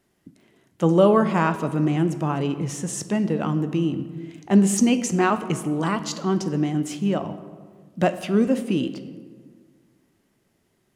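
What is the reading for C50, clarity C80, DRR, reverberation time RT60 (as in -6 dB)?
12.0 dB, 14.0 dB, 10.0 dB, 1.6 s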